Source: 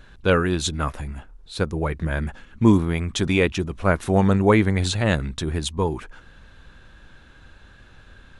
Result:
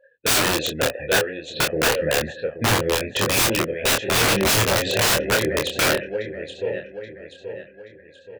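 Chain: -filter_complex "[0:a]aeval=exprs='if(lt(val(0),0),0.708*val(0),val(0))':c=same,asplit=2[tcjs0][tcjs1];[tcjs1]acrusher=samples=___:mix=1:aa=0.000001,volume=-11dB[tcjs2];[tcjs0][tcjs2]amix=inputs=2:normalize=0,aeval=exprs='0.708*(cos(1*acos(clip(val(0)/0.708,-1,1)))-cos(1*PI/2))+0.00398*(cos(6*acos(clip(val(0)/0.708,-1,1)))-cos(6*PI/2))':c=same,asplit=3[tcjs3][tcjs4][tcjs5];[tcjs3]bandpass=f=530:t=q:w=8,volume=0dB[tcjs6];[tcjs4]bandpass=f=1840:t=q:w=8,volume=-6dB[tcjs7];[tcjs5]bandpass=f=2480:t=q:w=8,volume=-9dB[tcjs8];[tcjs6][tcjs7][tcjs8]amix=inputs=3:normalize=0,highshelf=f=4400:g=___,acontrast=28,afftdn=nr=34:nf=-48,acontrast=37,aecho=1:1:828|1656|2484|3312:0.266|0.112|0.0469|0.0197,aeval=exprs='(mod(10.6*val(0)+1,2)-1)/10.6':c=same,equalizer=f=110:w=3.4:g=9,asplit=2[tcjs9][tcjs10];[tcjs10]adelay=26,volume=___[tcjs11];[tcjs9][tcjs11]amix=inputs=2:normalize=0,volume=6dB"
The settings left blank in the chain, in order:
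24, 9.5, -4dB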